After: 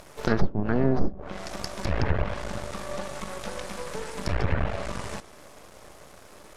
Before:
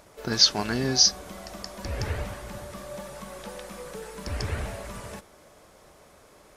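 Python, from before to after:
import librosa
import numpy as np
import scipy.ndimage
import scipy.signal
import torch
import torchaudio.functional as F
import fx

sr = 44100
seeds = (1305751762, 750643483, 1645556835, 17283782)

y = np.maximum(x, 0.0)
y = fx.env_lowpass_down(y, sr, base_hz=320.0, full_db=-22.0)
y = F.gain(torch.from_numpy(y), 9.0).numpy()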